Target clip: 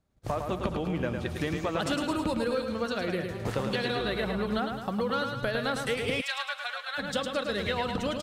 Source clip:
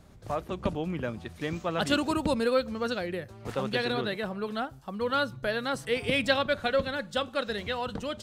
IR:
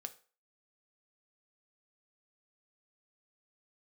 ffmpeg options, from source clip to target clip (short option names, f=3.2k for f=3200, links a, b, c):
-filter_complex "[0:a]asoftclip=type=tanh:threshold=-15.5dB,acompressor=threshold=-36dB:ratio=6,aecho=1:1:107|214|321|428|535|642|749:0.531|0.287|0.155|0.0836|0.0451|0.0244|0.0132,asettb=1/sr,asplit=3[a][b][c];[a]atrim=end=3.994[d];[b]atrim=start=3.99:end=4.59,asetpts=PTS-STARTPTS,afade=t=in:d=0.004:c=qsin,afade=t=out:st=0.596:d=0.004:c=qsin,aeval=exprs='val(0)+0.00355*(sin(2*PI*60*n/s)+sin(2*PI*2*60*n/s)/2+sin(2*PI*3*60*n/s)/3+sin(2*PI*4*60*n/s)/4+sin(2*PI*5*60*n/s)/5)':c=same[e];[c]atrim=start=4.586[f];[d][e]acrossfade=d=0.004:c1=hsin:c2=qsin[g];[g][f]acrossfade=d=0.004:c1=qsin:c2=hsin,asplit=3[h][i][j];[h]afade=t=out:st=6.2:d=0.02[k];[i]highpass=f=900:w=0.5412,highpass=f=900:w=1.3066,afade=t=in:st=6.2:d=0.02,afade=t=out:st=6.97:d=0.02[l];[j]afade=t=in:st=6.97:d=0.02[m];[k][l][m]amix=inputs=3:normalize=0,agate=range=-29dB:threshold=-47dB:ratio=16:detection=peak,volume=8dB"